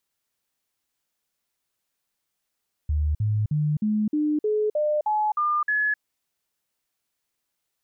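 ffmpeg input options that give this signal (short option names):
-f lavfi -i "aevalsrc='0.1*clip(min(mod(t,0.31),0.26-mod(t,0.31))/0.005,0,1)*sin(2*PI*75.2*pow(2,floor(t/0.31)/2)*mod(t,0.31))':d=3.1:s=44100"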